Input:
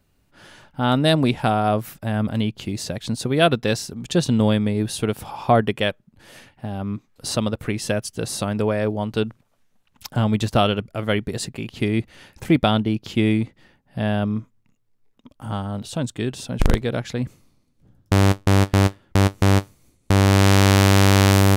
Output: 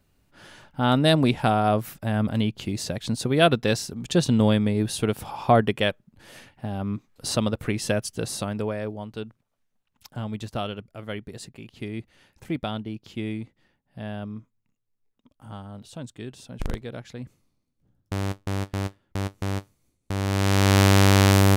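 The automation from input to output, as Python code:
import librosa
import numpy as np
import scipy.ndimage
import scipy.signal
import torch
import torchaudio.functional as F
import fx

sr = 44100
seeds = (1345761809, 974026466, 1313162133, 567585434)

y = fx.gain(x, sr, db=fx.line((8.12, -1.5), (9.17, -12.0), (20.14, -12.0), (20.79, -2.0)))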